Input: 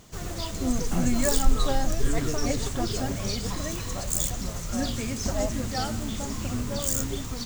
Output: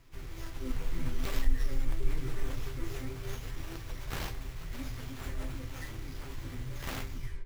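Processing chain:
turntable brake at the end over 0.47 s
guitar amp tone stack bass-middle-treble 6-0-2
in parallel at −1 dB: brickwall limiter −30.5 dBFS, peak gain reduction 11 dB
on the sum: phaser with its sweep stopped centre 740 Hz, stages 6
resonators tuned to a chord C3 major, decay 0.22 s
formants moved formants +6 semitones
on a send: backwards echo 488 ms −22 dB
on the sum: windowed peak hold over 5 samples
level +17.5 dB

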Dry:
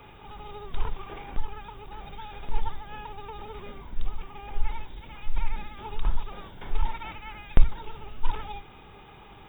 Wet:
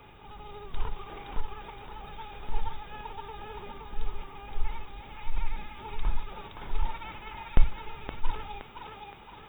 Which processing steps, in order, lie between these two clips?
feedback echo with a high-pass in the loop 519 ms, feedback 49%, high-pass 340 Hz, level −3 dB
level −3 dB

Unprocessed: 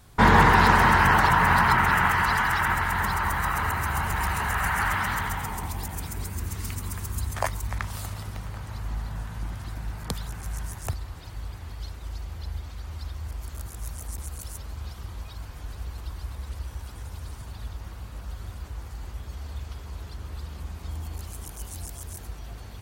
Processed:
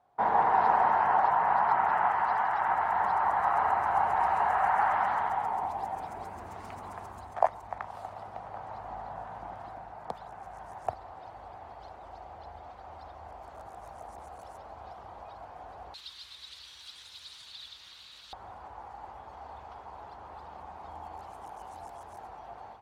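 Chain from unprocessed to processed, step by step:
automatic gain control gain up to 12.5 dB
resonant band-pass 740 Hz, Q 4.5, from 0:15.94 3,800 Hz, from 0:18.33 810 Hz

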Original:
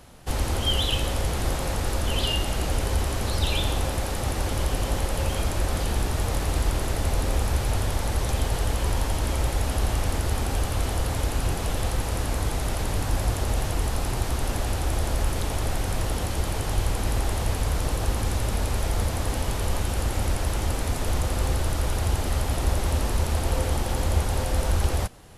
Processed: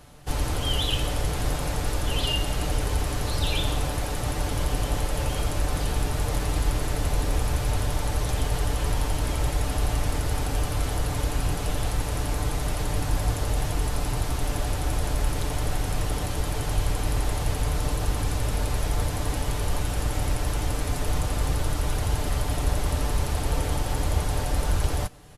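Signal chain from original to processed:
parametric band 65 Hz +5 dB 1.2 octaves
comb filter 6.8 ms, depth 50%
level −2 dB

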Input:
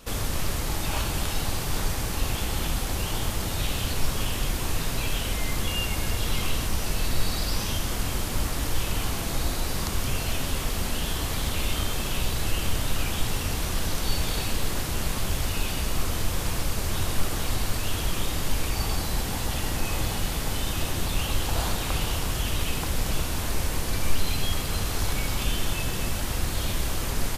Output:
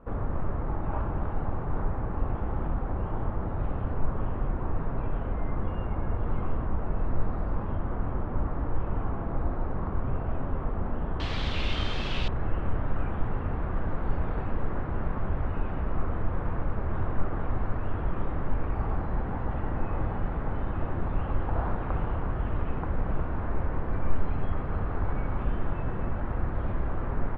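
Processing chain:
low-pass filter 1,300 Hz 24 dB per octave, from 0:11.20 4,100 Hz, from 0:12.28 1,500 Hz
level −1 dB

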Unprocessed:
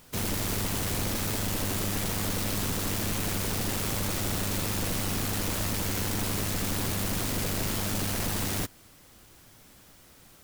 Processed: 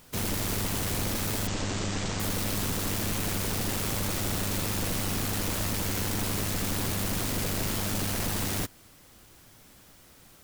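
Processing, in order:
0:01.47–0:02.20: Butterworth low-pass 8,000 Hz 72 dB per octave

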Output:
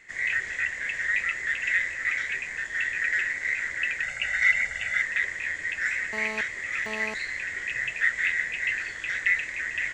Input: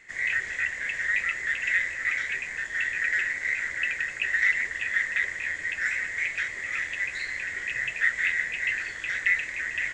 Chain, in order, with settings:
0:04.03–0:05.02: comb filter 1.4 ms, depth 86%
0:06.13–0:07.14: phone interference −36 dBFS

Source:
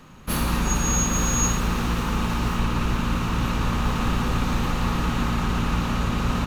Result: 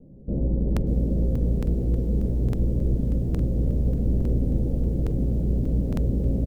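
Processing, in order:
Butterworth low-pass 580 Hz 48 dB per octave
double-tracking delay 15 ms −6.5 dB
regular buffer underruns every 0.86 s, samples 2,048, repeat, from 0:00.72
feedback echo at a low word length 588 ms, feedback 55%, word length 8 bits, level −13 dB

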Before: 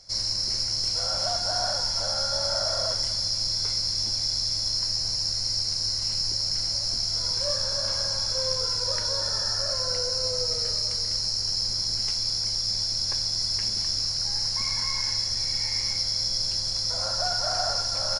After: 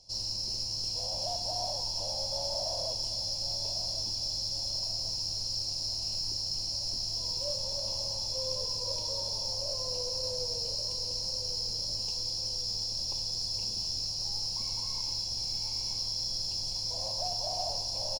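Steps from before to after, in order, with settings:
elliptic band-stop filter 970–2,600 Hz
repeating echo 1,099 ms, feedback 53%, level −10.5 dB
in parallel at −11 dB: gain into a clipping stage and back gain 30.5 dB
on the sum: noise that follows the level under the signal 30 dB
high-shelf EQ 7,200 Hz −4.5 dB
level −6.5 dB

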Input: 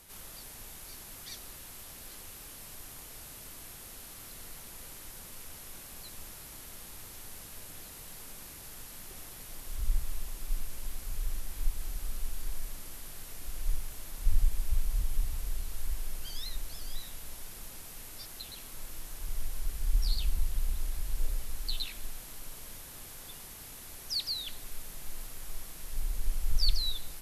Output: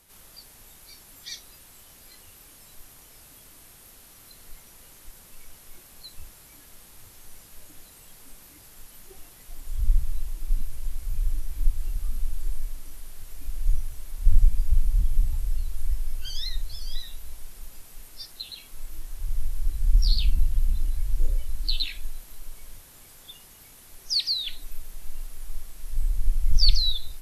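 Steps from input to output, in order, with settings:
noise reduction from a noise print of the clip's start 12 dB
level +8.5 dB

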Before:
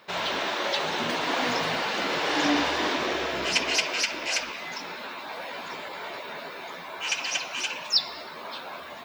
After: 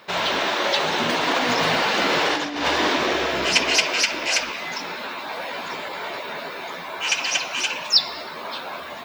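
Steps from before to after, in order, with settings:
0:01.28–0:02.68: compressor whose output falls as the input rises −27 dBFS, ratio −0.5
level +6 dB

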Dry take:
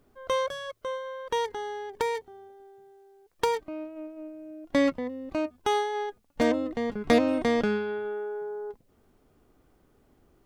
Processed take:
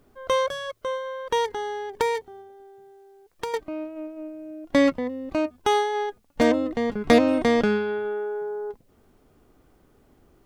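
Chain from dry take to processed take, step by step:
0:02.41–0:03.54: downward compressor 1.5 to 1, threshold −51 dBFS, peak gain reduction 11 dB
level +4.5 dB

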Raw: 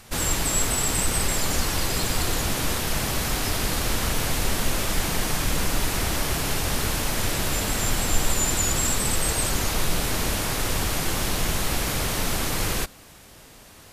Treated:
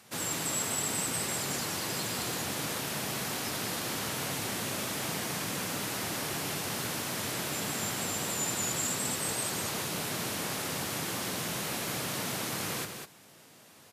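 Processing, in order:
high-pass filter 120 Hz 24 dB per octave
on a send: single-tap delay 198 ms −6.5 dB
on the sum: level −8 dB

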